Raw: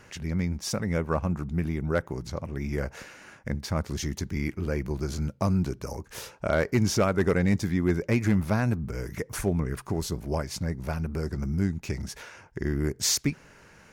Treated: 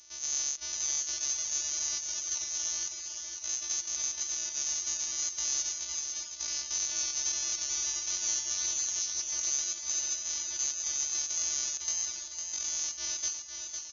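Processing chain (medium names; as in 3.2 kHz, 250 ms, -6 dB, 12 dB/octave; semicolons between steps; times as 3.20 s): sorted samples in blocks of 256 samples; peak limiter -22.5 dBFS, peak gain reduction 9.5 dB; frequency inversion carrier 4 kHz; pitch shift +8.5 st; on a send: feedback delay 505 ms, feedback 60%, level -6.5 dB; on the sum: trim -3 dB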